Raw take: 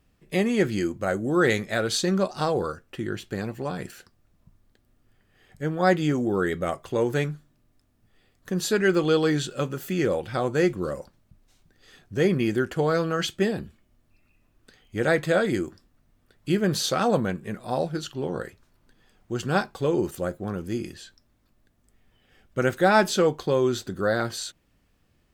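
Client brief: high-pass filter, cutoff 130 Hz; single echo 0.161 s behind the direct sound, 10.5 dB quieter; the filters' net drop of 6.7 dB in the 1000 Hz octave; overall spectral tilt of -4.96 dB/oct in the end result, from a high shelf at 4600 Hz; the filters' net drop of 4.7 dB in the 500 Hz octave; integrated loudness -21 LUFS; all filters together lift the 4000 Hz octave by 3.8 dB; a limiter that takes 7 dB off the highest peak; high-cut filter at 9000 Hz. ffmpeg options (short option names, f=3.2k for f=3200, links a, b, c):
-af "highpass=130,lowpass=9k,equalizer=f=500:t=o:g=-4,equalizer=f=1k:t=o:g=-8.5,equalizer=f=4k:t=o:g=8,highshelf=f=4.6k:g=-6,alimiter=limit=-17.5dB:level=0:latency=1,aecho=1:1:161:0.299,volume=8.5dB"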